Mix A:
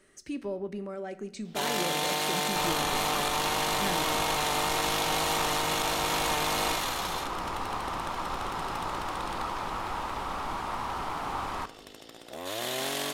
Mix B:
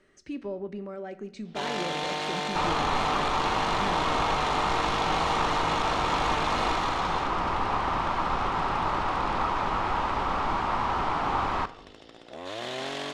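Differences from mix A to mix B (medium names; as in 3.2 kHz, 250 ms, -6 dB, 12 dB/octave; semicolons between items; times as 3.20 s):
second sound +7.0 dB; master: add distance through air 120 m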